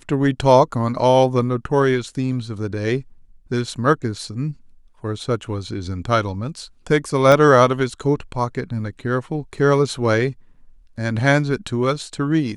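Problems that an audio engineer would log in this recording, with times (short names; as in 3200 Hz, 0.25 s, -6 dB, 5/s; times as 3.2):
7.32 pop -5 dBFS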